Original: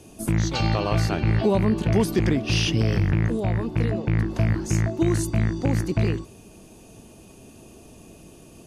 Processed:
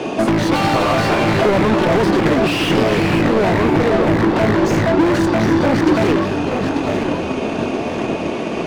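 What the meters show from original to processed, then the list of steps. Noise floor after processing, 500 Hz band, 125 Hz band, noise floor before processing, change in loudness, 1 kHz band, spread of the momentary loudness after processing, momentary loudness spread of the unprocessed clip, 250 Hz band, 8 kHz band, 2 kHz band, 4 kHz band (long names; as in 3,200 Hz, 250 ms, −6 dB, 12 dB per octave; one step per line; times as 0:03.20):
−23 dBFS, +12.5 dB, +1.0 dB, −48 dBFS, +7.0 dB, +15.0 dB, 6 LU, 4 LU, +10.0 dB, +2.0 dB, +12.5 dB, +7.5 dB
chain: band-pass filter 110–3,900 Hz
low-shelf EQ 140 Hz −5.5 dB
mid-hump overdrive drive 43 dB, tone 1,400 Hz, clips at −6.5 dBFS
delay with pitch and tempo change per echo 173 ms, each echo −2 semitones, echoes 3, each echo −6 dB
transient designer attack +6 dB, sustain −1 dB
level −2 dB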